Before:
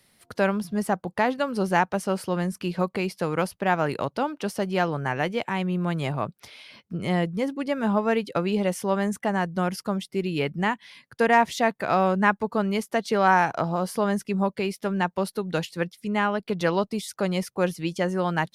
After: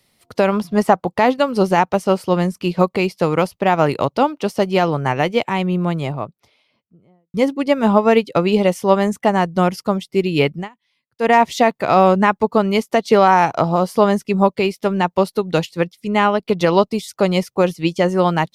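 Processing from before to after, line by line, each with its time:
0.52–1.10 s: peaking EQ 1.2 kHz +6 dB 2.4 oct
5.42–7.34 s: studio fade out
10.54–11.32 s: dip -21 dB, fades 0.15 s
whole clip: graphic EQ with 31 bands 200 Hz -3 dB, 1.6 kHz -8 dB, 10 kHz -5 dB; loudness maximiser +12.5 dB; upward expansion 1.5:1, over -30 dBFS

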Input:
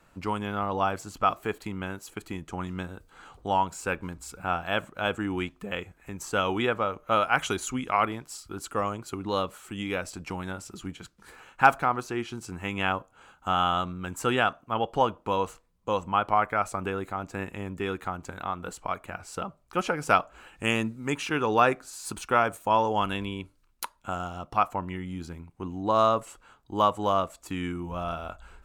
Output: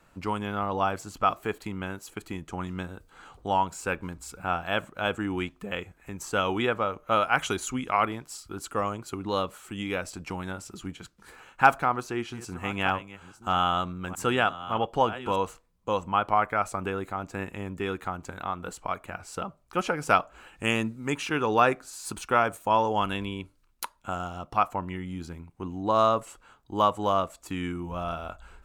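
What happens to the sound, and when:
11.65–15.36 s: chunks repeated in reverse 626 ms, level -13.5 dB

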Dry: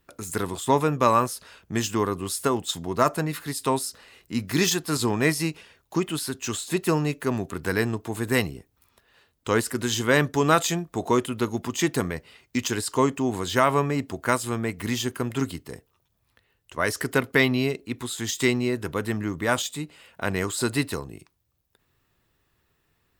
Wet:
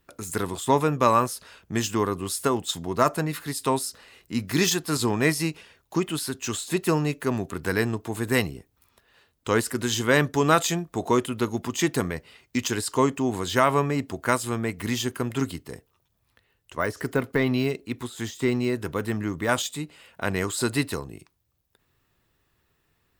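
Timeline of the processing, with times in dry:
15.59–19.49 s: de-esser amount 80%

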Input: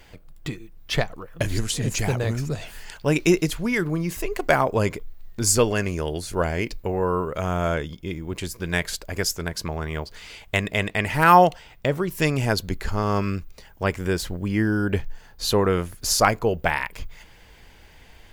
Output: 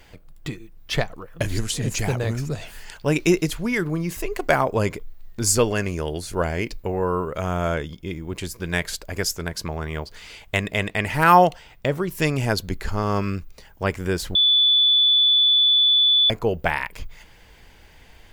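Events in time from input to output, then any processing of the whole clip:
14.35–16.30 s: bleep 3.47 kHz -13.5 dBFS

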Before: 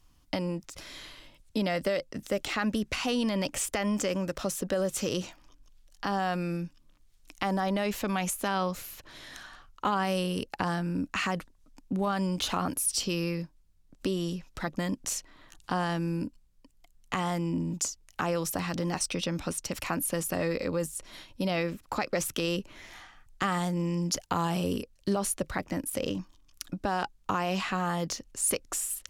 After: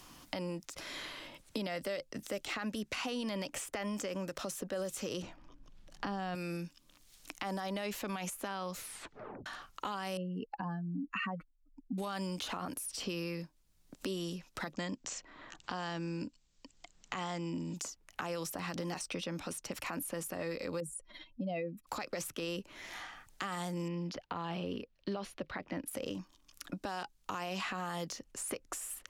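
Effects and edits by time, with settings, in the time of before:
5.22–6.35 s: RIAA curve playback
8.78 s: tape stop 0.68 s
10.17–11.98 s: spectral contrast enhancement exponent 2.4
14.73–17.76 s: elliptic low-pass 7.6 kHz
20.80–21.87 s: spectral contrast enhancement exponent 2.2
23.88–25.88 s: distance through air 330 m
whole clip: bass shelf 150 Hz -9.5 dB; peak limiter -23 dBFS; three bands compressed up and down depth 70%; trim -5 dB

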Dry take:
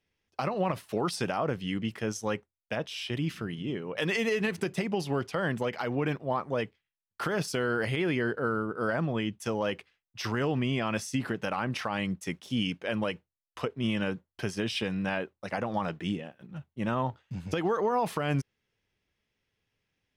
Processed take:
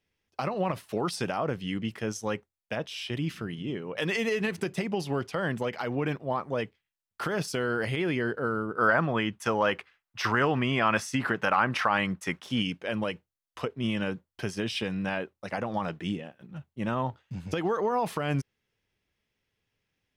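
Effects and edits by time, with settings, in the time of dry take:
8.78–12.62 s: peaking EQ 1.3 kHz +10.5 dB 1.9 oct

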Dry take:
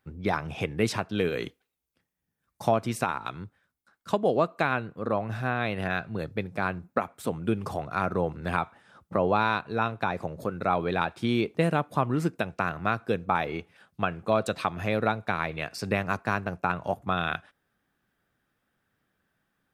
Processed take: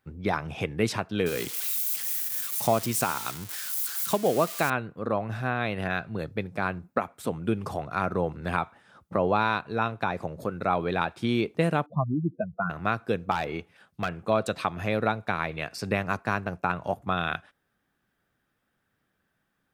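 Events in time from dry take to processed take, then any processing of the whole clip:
1.26–4.70 s: zero-crossing glitches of -23.5 dBFS
11.86–12.70 s: spectral contrast enhancement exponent 3.5
13.31–14.27 s: overload inside the chain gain 21 dB

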